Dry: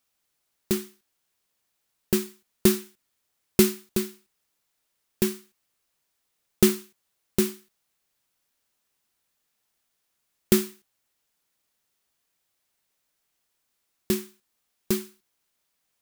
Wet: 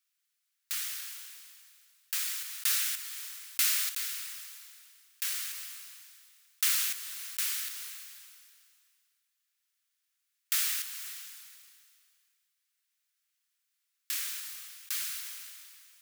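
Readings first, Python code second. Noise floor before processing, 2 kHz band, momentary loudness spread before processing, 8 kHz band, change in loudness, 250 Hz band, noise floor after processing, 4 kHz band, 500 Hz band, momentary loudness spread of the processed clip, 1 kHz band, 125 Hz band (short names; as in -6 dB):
-77 dBFS, +1.0 dB, 10 LU, +1.5 dB, -5.0 dB, under -40 dB, -81 dBFS, +1.5 dB, under -40 dB, 20 LU, -5.5 dB, under -40 dB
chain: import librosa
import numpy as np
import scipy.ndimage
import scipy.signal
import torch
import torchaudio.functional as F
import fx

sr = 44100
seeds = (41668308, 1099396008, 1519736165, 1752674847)

y = scipy.signal.sosfilt(scipy.signal.butter(4, 1400.0, 'highpass', fs=sr, output='sos'), x)
y = fx.sustainer(y, sr, db_per_s=27.0)
y = F.gain(torch.from_numpy(y), -4.0).numpy()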